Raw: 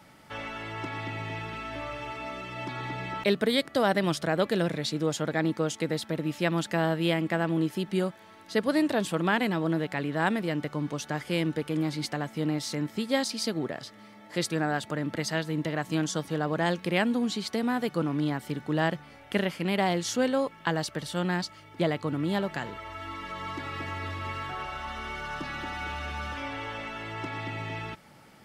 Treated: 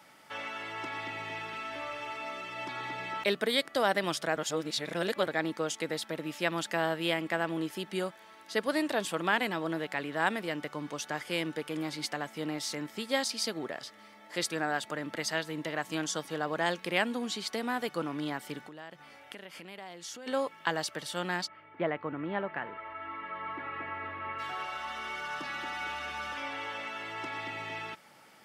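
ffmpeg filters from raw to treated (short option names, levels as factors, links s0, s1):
-filter_complex "[0:a]asplit=3[s0][s1][s2];[s0]afade=t=out:st=18.64:d=0.02[s3];[s1]acompressor=threshold=0.0126:ratio=8:attack=3.2:release=140:knee=1:detection=peak,afade=t=in:st=18.64:d=0.02,afade=t=out:st=20.26:d=0.02[s4];[s2]afade=t=in:st=20.26:d=0.02[s5];[s3][s4][s5]amix=inputs=3:normalize=0,asplit=3[s6][s7][s8];[s6]afade=t=out:st=21.46:d=0.02[s9];[s7]lowpass=f=2300:w=0.5412,lowpass=f=2300:w=1.3066,afade=t=in:st=21.46:d=0.02,afade=t=out:st=24.38:d=0.02[s10];[s8]afade=t=in:st=24.38:d=0.02[s11];[s9][s10][s11]amix=inputs=3:normalize=0,asplit=3[s12][s13][s14];[s12]atrim=end=4.362[s15];[s13]atrim=start=4.358:end=5.272,asetpts=PTS-STARTPTS,areverse[s16];[s14]atrim=start=5.268[s17];[s15][s16]acrossfade=d=0.004:c1=hsin:c2=hsin[s18];[s18][s17]acrossfade=d=0.004:c1=hsin:c2=hsin,highpass=f=590:p=1,bandreject=f=4100:w=28"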